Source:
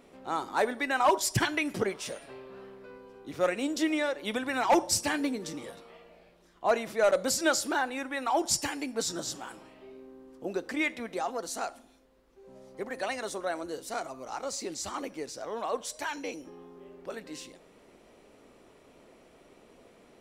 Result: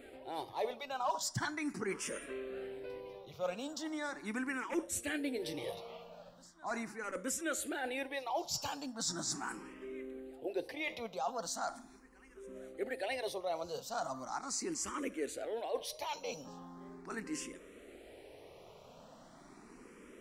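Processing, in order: reverse; compression 4:1, threshold -38 dBFS, peak gain reduction 16 dB; reverse; reverse echo 871 ms -23.5 dB; barber-pole phaser +0.39 Hz; trim +4.5 dB

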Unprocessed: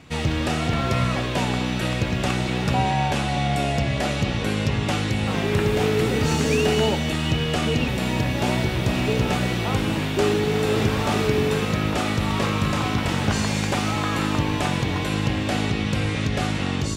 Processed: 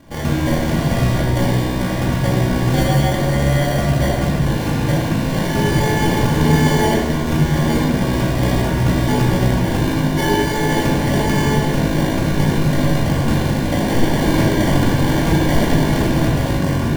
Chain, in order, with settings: 13.88–16.26 s: resonant high shelf 2.3 kHz +7 dB, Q 3; sample-and-hold 34×; simulated room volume 520 m³, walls mixed, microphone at 2.3 m; trim -1.5 dB

